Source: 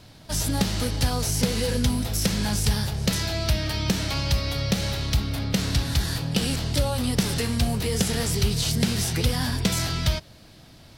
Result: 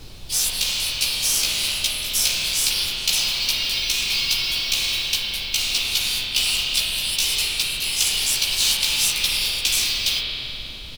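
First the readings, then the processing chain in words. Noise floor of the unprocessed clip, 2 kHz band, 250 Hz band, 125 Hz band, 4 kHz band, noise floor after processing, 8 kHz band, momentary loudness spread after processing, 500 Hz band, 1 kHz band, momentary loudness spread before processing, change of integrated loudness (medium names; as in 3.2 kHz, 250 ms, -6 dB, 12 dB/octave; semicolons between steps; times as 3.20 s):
-49 dBFS, +7.5 dB, -18.5 dB, -18.5 dB, +10.5 dB, -34 dBFS, +8.0 dB, 4 LU, -13.0 dB, -5.5 dB, 2 LU, +5.0 dB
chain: steep high-pass 2.3 kHz 72 dB/octave; doubling 15 ms -2 dB; modulation noise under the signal 13 dB; spring tank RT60 3.1 s, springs 32 ms, chirp 25 ms, DRR -3.5 dB; added noise brown -44 dBFS; trim +6 dB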